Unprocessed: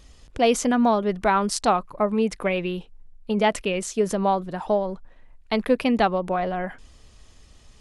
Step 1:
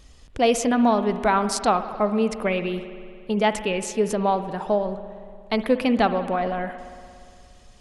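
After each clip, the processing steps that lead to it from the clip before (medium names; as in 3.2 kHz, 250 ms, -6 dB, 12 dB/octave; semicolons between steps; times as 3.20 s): spring tank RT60 2.3 s, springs 58 ms, chirp 50 ms, DRR 10.5 dB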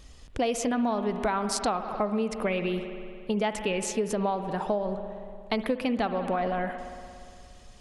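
compression 6:1, threshold -24 dBFS, peak gain reduction 10 dB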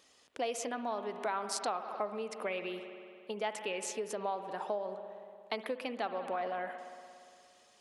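high-pass 400 Hz 12 dB/octave; trim -6.5 dB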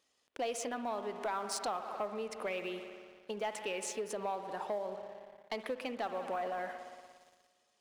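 waveshaping leveller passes 2; trim -8 dB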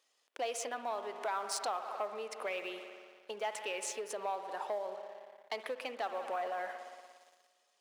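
high-pass 460 Hz 12 dB/octave; trim +1 dB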